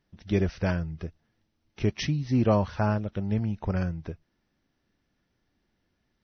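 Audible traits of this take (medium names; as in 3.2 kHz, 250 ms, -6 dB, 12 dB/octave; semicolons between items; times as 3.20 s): noise floor -76 dBFS; spectral tilt -7.0 dB/octave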